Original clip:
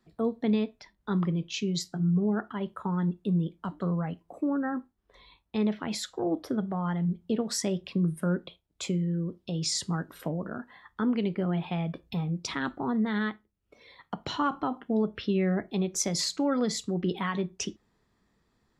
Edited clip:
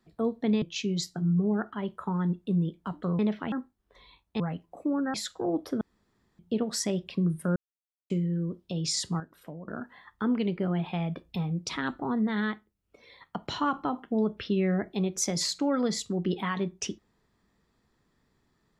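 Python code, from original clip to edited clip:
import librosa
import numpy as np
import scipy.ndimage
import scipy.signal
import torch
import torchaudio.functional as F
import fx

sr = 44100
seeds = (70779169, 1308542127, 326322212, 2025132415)

y = fx.edit(x, sr, fx.cut(start_s=0.62, length_s=0.78),
    fx.swap(start_s=3.97, length_s=0.74, other_s=5.59, other_length_s=0.33),
    fx.room_tone_fill(start_s=6.59, length_s=0.58),
    fx.silence(start_s=8.34, length_s=0.54),
    fx.clip_gain(start_s=9.98, length_s=0.48, db=-10.0), tone=tone)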